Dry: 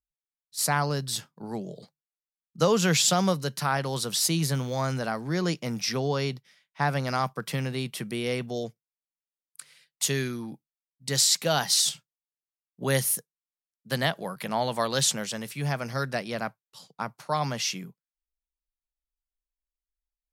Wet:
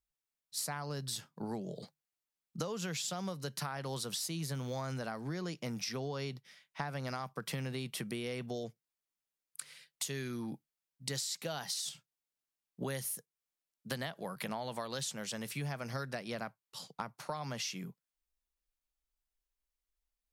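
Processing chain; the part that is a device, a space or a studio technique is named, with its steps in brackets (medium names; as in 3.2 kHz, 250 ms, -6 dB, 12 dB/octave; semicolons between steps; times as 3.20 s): serial compression, leveller first (compression 2:1, threshold -27 dBFS, peak gain reduction 5.5 dB; compression 5:1, threshold -39 dBFS, peak gain reduction 15 dB); trim +2 dB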